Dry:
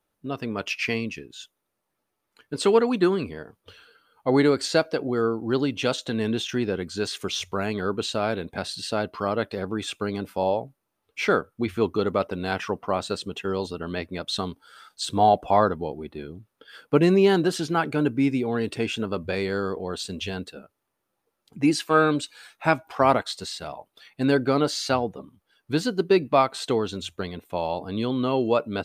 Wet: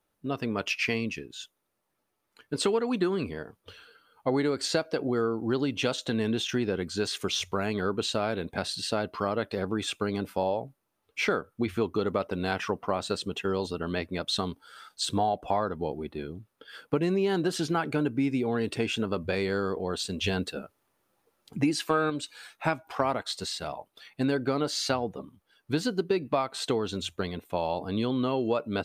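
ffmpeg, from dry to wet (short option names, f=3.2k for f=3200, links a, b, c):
-filter_complex "[0:a]asplit=3[a][b][c];[a]atrim=end=20.242[d];[b]atrim=start=20.238:end=22.102,asetpts=PTS-STARTPTS,volume=5.5dB[e];[c]atrim=start=22.098[f];[d][e]acrossfade=d=0.004:c1=hsin:c2=hsin[g];[g][f]acrossfade=d=0.004:c1=hsin:c2=hsin,acompressor=threshold=-23dB:ratio=6"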